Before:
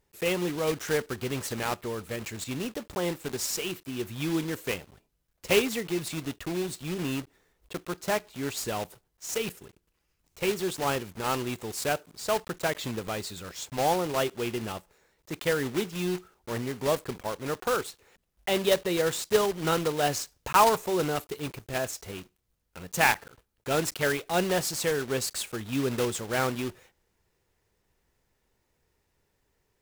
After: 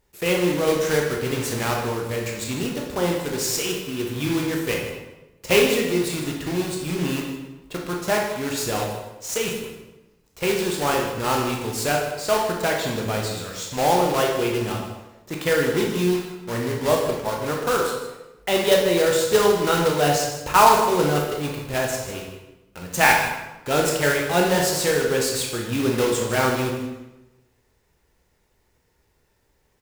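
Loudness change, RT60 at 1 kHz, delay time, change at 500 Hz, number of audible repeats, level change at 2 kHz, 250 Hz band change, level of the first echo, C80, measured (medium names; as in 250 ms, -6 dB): +7.0 dB, 1.0 s, 155 ms, +7.5 dB, 1, +7.5 dB, +7.0 dB, -12.0 dB, 6.0 dB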